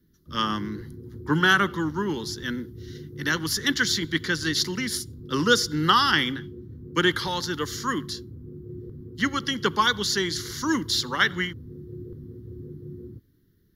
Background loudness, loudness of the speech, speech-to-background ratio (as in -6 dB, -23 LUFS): -41.0 LUFS, -24.5 LUFS, 16.5 dB